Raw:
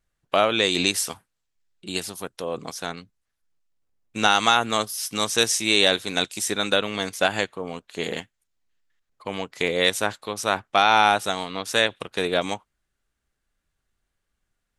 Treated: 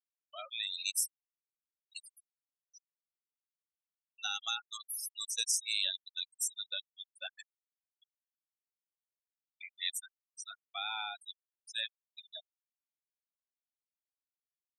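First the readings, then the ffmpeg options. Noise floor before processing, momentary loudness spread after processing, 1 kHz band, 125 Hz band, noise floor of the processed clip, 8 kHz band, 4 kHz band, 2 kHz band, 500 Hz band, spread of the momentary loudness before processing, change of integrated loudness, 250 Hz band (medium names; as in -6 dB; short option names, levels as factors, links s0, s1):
-79 dBFS, 18 LU, -25.5 dB, under -40 dB, under -85 dBFS, -8.5 dB, -13.0 dB, -20.0 dB, -34.5 dB, 16 LU, -14.0 dB, under -40 dB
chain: -af "aderivative,afftfilt=real='re*gte(hypot(re,im),0.0631)':imag='im*gte(hypot(re,im),0.0631)':win_size=1024:overlap=0.75,volume=0.501"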